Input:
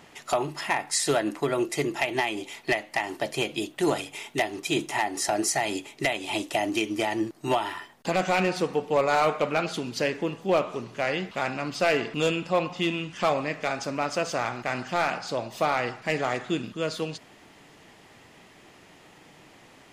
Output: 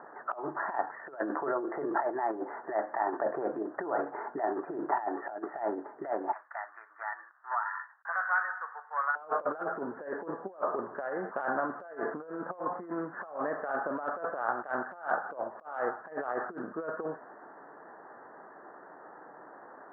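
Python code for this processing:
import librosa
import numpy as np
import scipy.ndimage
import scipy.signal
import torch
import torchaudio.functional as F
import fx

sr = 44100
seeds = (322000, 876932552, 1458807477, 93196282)

y = fx.over_compress(x, sr, threshold_db=-32.0, ratio=-1.0, at=(1.19, 4.97))
y = fx.highpass(y, sr, hz=1300.0, slope=24, at=(6.31, 9.15), fade=0.02)
y = fx.transient(y, sr, attack_db=7, sustain_db=-5, at=(14.42, 16.17))
y = scipy.signal.sosfilt(scipy.signal.butter(16, 1700.0, 'lowpass', fs=sr, output='sos'), y)
y = fx.over_compress(y, sr, threshold_db=-32.0, ratio=-0.5)
y = scipy.signal.sosfilt(scipy.signal.butter(2, 480.0, 'highpass', fs=sr, output='sos'), y)
y = y * librosa.db_to_amplitude(3.0)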